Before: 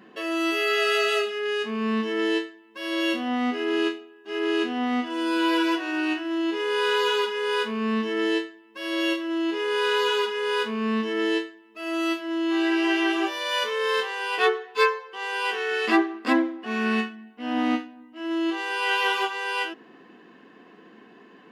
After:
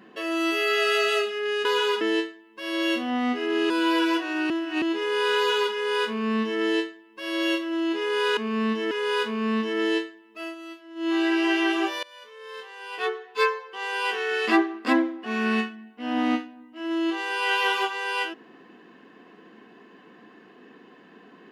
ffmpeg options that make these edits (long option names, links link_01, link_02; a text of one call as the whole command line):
ffmpeg -i in.wav -filter_complex "[0:a]asplit=11[link_01][link_02][link_03][link_04][link_05][link_06][link_07][link_08][link_09][link_10][link_11];[link_01]atrim=end=1.652[link_12];[link_02]atrim=start=9.948:end=10.312[link_13];[link_03]atrim=start=2.188:end=3.882[link_14];[link_04]atrim=start=5.278:end=6.082[link_15];[link_05]atrim=start=6.078:end=6.402,asetpts=PTS-STARTPTS,areverse[link_16];[link_06]atrim=start=6.398:end=9.952[link_17];[link_07]atrim=start=1.648:end=2.192[link_18];[link_08]atrim=start=10.308:end=11.95,asetpts=PTS-STARTPTS,afade=type=out:start_time=1.512:duration=0.13:silence=0.177828[link_19];[link_09]atrim=start=11.95:end=12.35,asetpts=PTS-STARTPTS,volume=-15dB[link_20];[link_10]atrim=start=12.35:end=13.43,asetpts=PTS-STARTPTS,afade=type=in:duration=0.13:silence=0.177828,afade=type=out:start_time=1.076:duration=0.004:curve=hsin:silence=0.0794328[link_21];[link_11]atrim=start=13.43,asetpts=PTS-STARTPTS,afade=type=in:duration=1.59:curve=qua:silence=0.0794328[link_22];[link_12][link_13]acrossfade=duration=0.004:curve1=hsin:curve2=hsin[link_23];[link_23][link_14]acrossfade=duration=0.004:curve1=hsin:curve2=hsin[link_24];[link_24][link_15]acrossfade=duration=0.004:curve1=hsin:curve2=hsin[link_25];[link_25][link_16]acrossfade=duration=0.004:curve1=hsin:curve2=hsin[link_26];[link_26][link_17]acrossfade=duration=0.004:curve1=hsin:curve2=hsin[link_27];[link_27][link_18]acrossfade=duration=0.004:curve1=hsin:curve2=hsin[link_28];[link_19][link_20][link_21][link_22]concat=n=4:v=0:a=1[link_29];[link_28][link_29]acrossfade=duration=0.004:curve1=hsin:curve2=hsin" out.wav